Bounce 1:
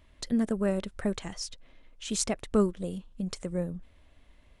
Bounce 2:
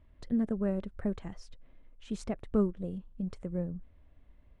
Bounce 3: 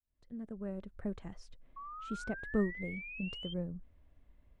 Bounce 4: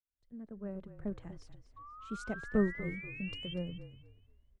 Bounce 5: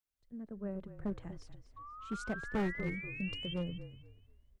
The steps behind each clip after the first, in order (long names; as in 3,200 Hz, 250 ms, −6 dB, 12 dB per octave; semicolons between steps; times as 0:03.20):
drawn EQ curve 110 Hz 0 dB, 1,700 Hz −9 dB, 6,800 Hz −22 dB
fade in at the beginning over 1.31 s; sound drawn into the spectrogram rise, 0:01.76–0:03.54, 1,100–3,200 Hz −42 dBFS; level −4 dB
echo with shifted repeats 242 ms, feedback 40%, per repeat −35 Hz, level −10.5 dB; multiband upward and downward expander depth 40%; level −1 dB
gain into a clipping stage and back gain 31 dB; level +1.5 dB